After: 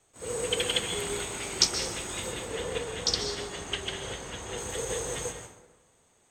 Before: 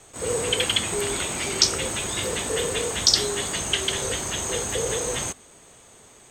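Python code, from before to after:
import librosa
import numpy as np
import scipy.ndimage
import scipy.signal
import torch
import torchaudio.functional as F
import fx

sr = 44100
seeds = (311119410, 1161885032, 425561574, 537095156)

y = fx.peak_eq(x, sr, hz=13000.0, db=-10.5, octaves=1.5, at=(2.32, 4.58))
y = fx.rev_plate(y, sr, seeds[0], rt60_s=1.4, hf_ratio=0.5, predelay_ms=115, drr_db=2.0)
y = fx.upward_expand(y, sr, threshold_db=-41.0, expansion=1.5)
y = y * 10.0 ** (-3.5 / 20.0)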